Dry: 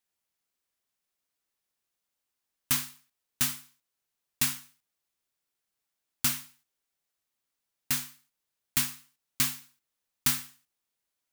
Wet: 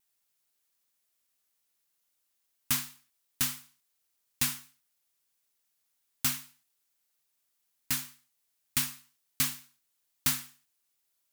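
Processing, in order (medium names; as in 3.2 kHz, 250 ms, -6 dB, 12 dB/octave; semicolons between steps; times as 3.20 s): added noise blue -76 dBFS; vibrato 1.3 Hz 23 cents; trim -1.5 dB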